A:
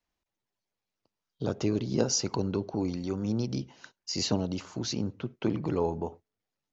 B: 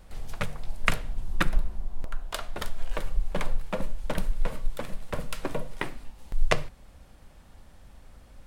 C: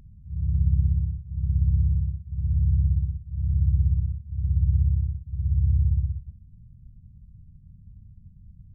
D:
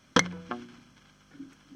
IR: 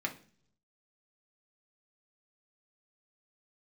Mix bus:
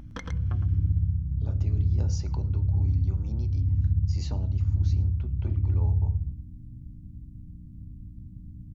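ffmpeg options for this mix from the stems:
-filter_complex "[0:a]volume=-17.5dB,asplit=3[link_01][link_02][link_03];[link_02]volume=-3.5dB[link_04];[link_03]volume=-22dB[link_05];[2:a]aeval=exprs='val(0)+0.00282*(sin(2*PI*60*n/s)+sin(2*PI*2*60*n/s)/2+sin(2*PI*3*60*n/s)/3+sin(2*PI*4*60*n/s)/4+sin(2*PI*5*60*n/s)/5)':channel_layout=same,acontrast=63,volume=-2.5dB,asplit=3[link_06][link_07][link_08];[link_07]volume=-11dB[link_09];[link_08]volume=-5dB[link_10];[3:a]highshelf=frequency=3300:gain=-7.5,volume=-10.5dB,afade=type=out:start_time=0.73:duration=0.45:silence=0.251189,asplit=3[link_11][link_12][link_13];[link_12]volume=-21dB[link_14];[link_13]volume=-10dB[link_15];[link_01][link_06]amix=inputs=2:normalize=0,equalizer=frequency=860:width=1.3:gain=8.5,acompressor=threshold=-23dB:ratio=6,volume=0dB[link_16];[link_11]alimiter=level_in=1.5dB:limit=-24dB:level=0:latency=1:release=206,volume=-1.5dB,volume=0dB[link_17];[4:a]atrim=start_sample=2205[link_18];[link_04][link_09][link_14]amix=inputs=3:normalize=0[link_19];[link_19][link_18]afir=irnorm=-1:irlink=0[link_20];[link_05][link_10][link_15]amix=inputs=3:normalize=0,aecho=0:1:111:1[link_21];[link_16][link_17][link_20][link_21]amix=inputs=4:normalize=0"

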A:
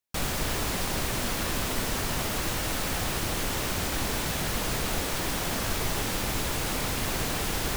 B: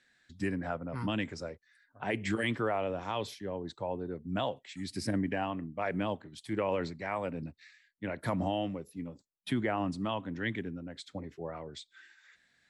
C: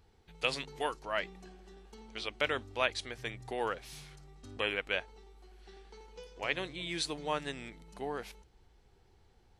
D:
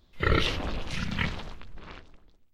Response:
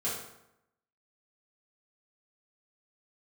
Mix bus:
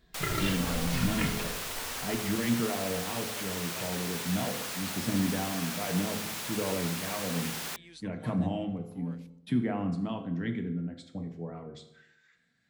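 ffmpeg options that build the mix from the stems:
-filter_complex "[0:a]highpass=frequency=1000:poles=1,volume=-4.5dB[link_01];[1:a]equalizer=frequency=180:width_type=o:width=1.8:gain=12,volume=-9dB,asplit=2[link_02][link_03];[link_03]volume=-7.5dB[link_04];[2:a]adelay=950,volume=-15.5dB[link_05];[3:a]alimiter=limit=-17.5dB:level=0:latency=1:release=291,asplit=2[link_06][link_07];[link_07]adelay=2.4,afreqshift=-0.84[link_08];[link_06][link_08]amix=inputs=2:normalize=1,volume=-3dB,asplit=2[link_09][link_10];[link_10]volume=-4.5dB[link_11];[4:a]atrim=start_sample=2205[link_12];[link_04][link_11]amix=inputs=2:normalize=0[link_13];[link_13][link_12]afir=irnorm=-1:irlink=0[link_14];[link_01][link_02][link_05][link_09][link_14]amix=inputs=5:normalize=0"

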